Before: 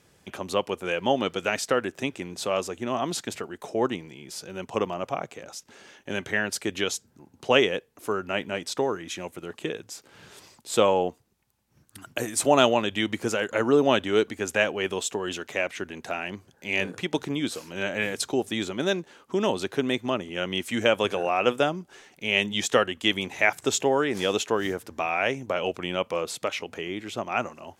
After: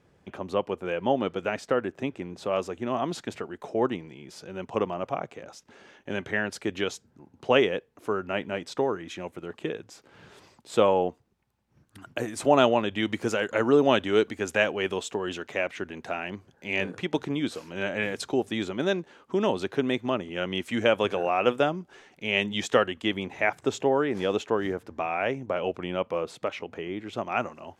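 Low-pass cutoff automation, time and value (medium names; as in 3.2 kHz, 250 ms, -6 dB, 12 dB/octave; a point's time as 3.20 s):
low-pass 6 dB/octave
1.2 kHz
from 2.53 s 2.1 kHz
from 13.03 s 4.7 kHz
from 14.97 s 2.8 kHz
from 23.02 s 1.4 kHz
from 27.13 s 3.1 kHz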